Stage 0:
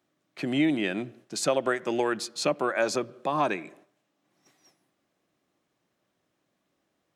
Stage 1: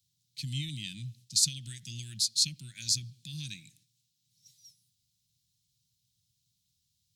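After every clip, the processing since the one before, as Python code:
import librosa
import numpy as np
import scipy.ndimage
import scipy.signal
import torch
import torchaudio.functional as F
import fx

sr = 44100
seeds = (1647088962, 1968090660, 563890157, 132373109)

y = scipy.signal.sosfilt(scipy.signal.ellip(3, 1.0, 60, [120.0, 4100.0], 'bandstop', fs=sr, output='sos'), x)
y = y * librosa.db_to_amplitude(8.0)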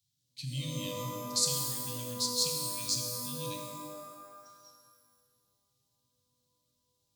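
y = fx.rev_shimmer(x, sr, seeds[0], rt60_s=1.7, semitones=12, shimmer_db=-2, drr_db=1.5)
y = y * librosa.db_to_amplitude(-4.5)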